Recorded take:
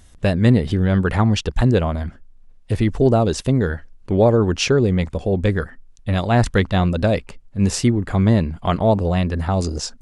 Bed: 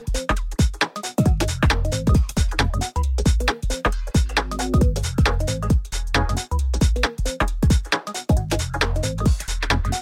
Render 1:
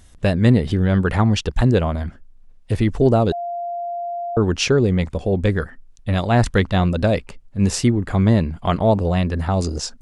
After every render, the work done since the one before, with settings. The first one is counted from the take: 3.32–4.37 s: bleep 694 Hz -23.5 dBFS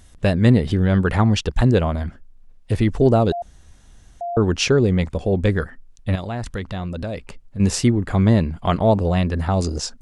3.42–4.21 s: room tone; 6.15–7.60 s: compression 3:1, threshold -27 dBFS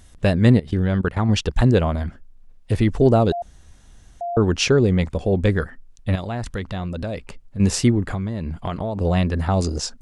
0.57–1.29 s: level held to a coarse grid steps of 19 dB; 8.11–9.01 s: compression 16:1, threshold -21 dBFS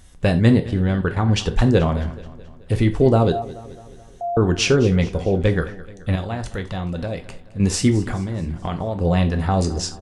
feedback delay 215 ms, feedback 54%, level -18 dB; gated-style reverb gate 110 ms falling, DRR 6.5 dB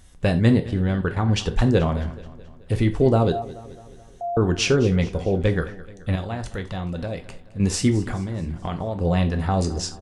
trim -2.5 dB

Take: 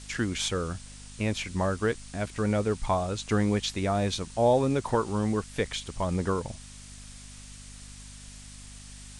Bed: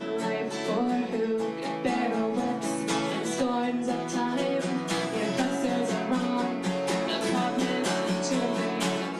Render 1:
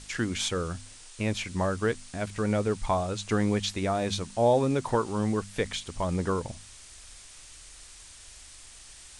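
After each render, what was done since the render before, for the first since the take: de-hum 50 Hz, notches 5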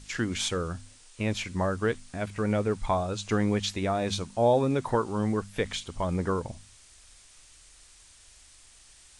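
noise print and reduce 6 dB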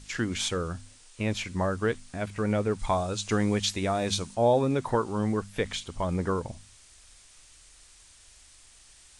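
2.79–4.35 s: treble shelf 4.2 kHz +6.5 dB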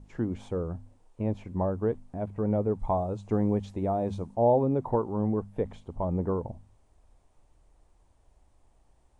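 FFT filter 880 Hz 0 dB, 1.4 kHz -16 dB, 4.7 kHz -28 dB, 8.8 kHz -26 dB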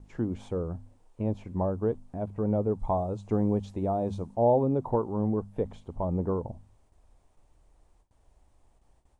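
dynamic bell 2 kHz, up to -7 dB, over -55 dBFS, Q 1.8; gate with hold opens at -54 dBFS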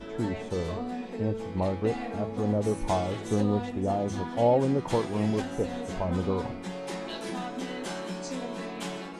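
add bed -8 dB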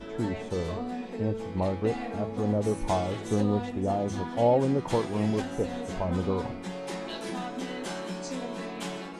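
no audible change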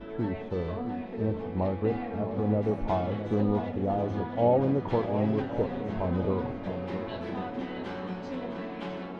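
distance through air 330 m; shuffle delay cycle 1100 ms, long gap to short 1.5:1, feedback 36%, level -10 dB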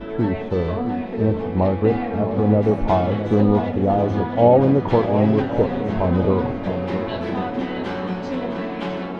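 trim +10 dB; peak limiter -3 dBFS, peak gain reduction 1 dB

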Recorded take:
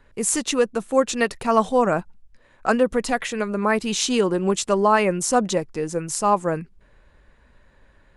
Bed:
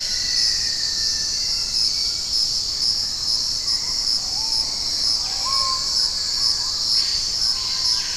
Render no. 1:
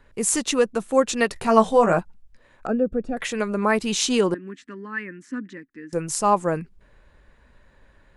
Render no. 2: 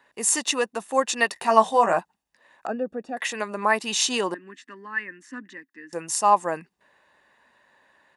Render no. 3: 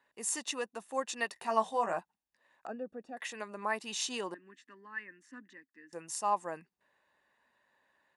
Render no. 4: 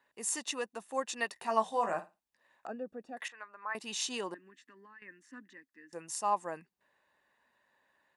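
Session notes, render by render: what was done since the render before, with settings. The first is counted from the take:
1.34–1.99 s: doubling 18 ms -4.5 dB; 2.67–3.17 s: boxcar filter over 43 samples; 4.34–5.93 s: two resonant band-passes 690 Hz, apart 2.7 oct
high-pass 400 Hz 12 dB/octave; comb 1.1 ms, depth 43%
trim -12.5 dB
1.65–2.66 s: flutter echo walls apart 8.8 m, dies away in 0.24 s; 3.28–3.75 s: band-pass filter 1.4 kHz, Q 2.2; 4.42–5.02 s: compression 5:1, threshold -53 dBFS

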